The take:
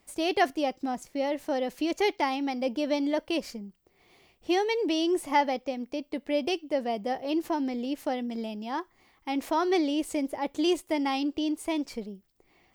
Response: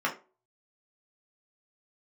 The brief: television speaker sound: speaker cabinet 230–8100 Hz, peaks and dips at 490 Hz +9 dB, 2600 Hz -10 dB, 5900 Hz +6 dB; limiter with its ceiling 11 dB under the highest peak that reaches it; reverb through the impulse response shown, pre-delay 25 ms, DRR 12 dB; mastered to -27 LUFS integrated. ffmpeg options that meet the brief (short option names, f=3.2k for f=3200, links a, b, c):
-filter_complex "[0:a]alimiter=limit=-24dB:level=0:latency=1,asplit=2[a][b];[1:a]atrim=start_sample=2205,adelay=25[c];[b][c]afir=irnorm=-1:irlink=0,volume=-22.5dB[d];[a][d]amix=inputs=2:normalize=0,highpass=f=230:w=0.5412,highpass=f=230:w=1.3066,equalizer=f=490:t=q:w=4:g=9,equalizer=f=2.6k:t=q:w=4:g=-10,equalizer=f=5.9k:t=q:w=4:g=6,lowpass=f=8.1k:w=0.5412,lowpass=f=8.1k:w=1.3066,volume=4dB"